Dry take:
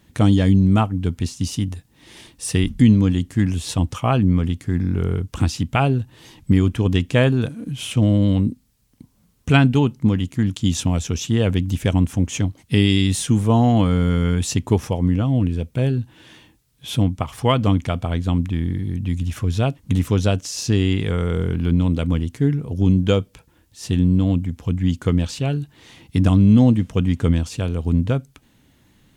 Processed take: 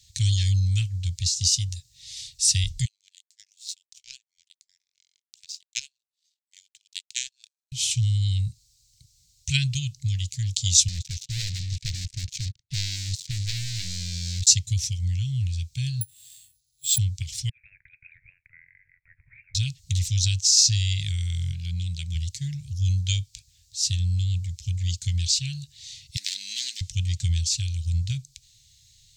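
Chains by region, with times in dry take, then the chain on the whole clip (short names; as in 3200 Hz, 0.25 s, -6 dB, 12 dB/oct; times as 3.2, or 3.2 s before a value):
2.85–7.72 steep high-pass 1300 Hz + power-law curve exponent 2
10.88–14.47 band-pass 360 Hz, Q 2.3 + sample leveller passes 5
16.01–16.98 notch 2300 Hz, Q 24 + careless resampling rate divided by 4×, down filtered, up zero stuff + upward expander, over -40 dBFS
17.49–19.55 steep high-pass 1400 Hz 72 dB/oct + negative-ratio compressor -39 dBFS, ratio -0.5 + inverted band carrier 3800 Hz
21.51–22.15 HPF 190 Hz 6 dB/oct + tilt shelf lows +3 dB, about 1400 Hz
26.16–26.81 median filter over 41 samples + steep high-pass 220 Hz 72 dB/oct + tilt shelf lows -9 dB, about 720 Hz
whole clip: inverse Chebyshev band-stop 220–1300 Hz, stop band 40 dB; band shelf 5500 Hz +15 dB 1.3 oct; gain -3 dB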